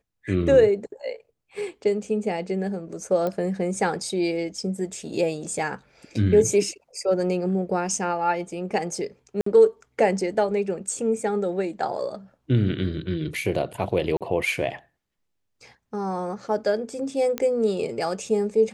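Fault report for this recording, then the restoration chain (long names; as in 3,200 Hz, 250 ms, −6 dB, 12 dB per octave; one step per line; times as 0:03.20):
0:03.27: click −16 dBFS
0:09.41–0:09.46: drop-out 54 ms
0:14.17–0:14.21: drop-out 37 ms
0:17.38: click −11 dBFS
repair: click removal
repair the gap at 0:09.41, 54 ms
repair the gap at 0:14.17, 37 ms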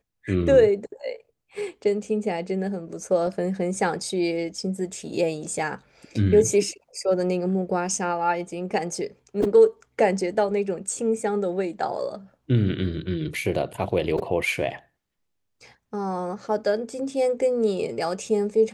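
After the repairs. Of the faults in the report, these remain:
none of them is left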